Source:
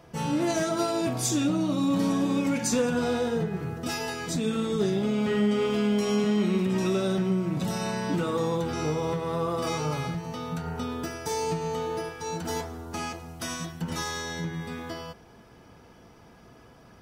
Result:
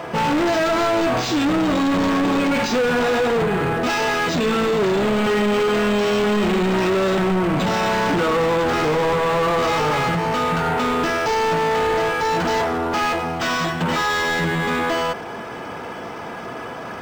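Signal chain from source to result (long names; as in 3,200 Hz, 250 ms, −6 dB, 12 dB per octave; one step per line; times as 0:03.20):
high-shelf EQ 5,700 Hz −9.5 dB
mid-hump overdrive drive 34 dB, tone 4,200 Hz, clips at −12 dBFS
linearly interpolated sample-rate reduction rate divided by 4×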